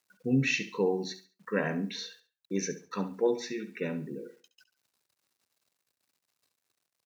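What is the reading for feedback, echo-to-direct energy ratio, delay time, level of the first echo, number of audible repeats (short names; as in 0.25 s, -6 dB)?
29%, -12.5 dB, 69 ms, -13.0 dB, 3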